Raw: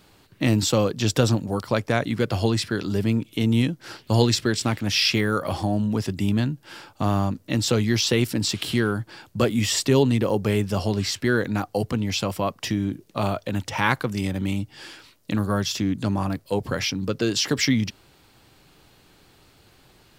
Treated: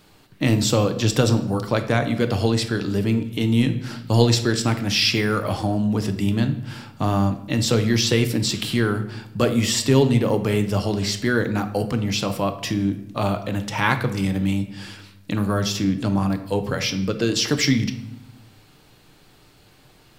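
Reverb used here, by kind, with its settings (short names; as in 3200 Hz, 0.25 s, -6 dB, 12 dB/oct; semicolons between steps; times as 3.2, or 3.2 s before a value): shoebox room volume 280 m³, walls mixed, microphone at 0.45 m; gain +1 dB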